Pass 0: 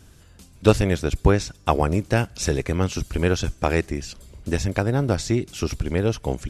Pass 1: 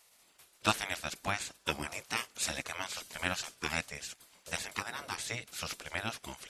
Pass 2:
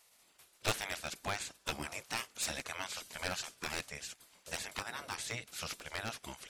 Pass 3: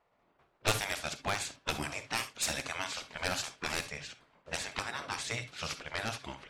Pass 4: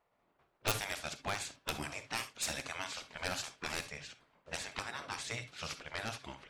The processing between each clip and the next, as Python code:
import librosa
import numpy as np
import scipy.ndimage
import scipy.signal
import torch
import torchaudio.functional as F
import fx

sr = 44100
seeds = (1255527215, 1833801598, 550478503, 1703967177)

y1 = fx.highpass(x, sr, hz=970.0, slope=6)
y1 = fx.spec_gate(y1, sr, threshold_db=-10, keep='weak')
y2 = np.minimum(y1, 2.0 * 10.0 ** (-26.5 / 20.0) - y1)
y2 = y2 * librosa.db_to_amplitude(-2.0)
y3 = fx.rev_gated(y2, sr, seeds[0], gate_ms=90, shape='rising', drr_db=10.5)
y3 = fx.env_lowpass(y3, sr, base_hz=1000.0, full_db=-34.5)
y3 = y3 * librosa.db_to_amplitude(4.0)
y4 = (np.mod(10.0 ** (16.0 / 20.0) * y3 + 1.0, 2.0) - 1.0) / 10.0 ** (16.0 / 20.0)
y4 = y4 * librosa.db_to_amplitude(-4.0)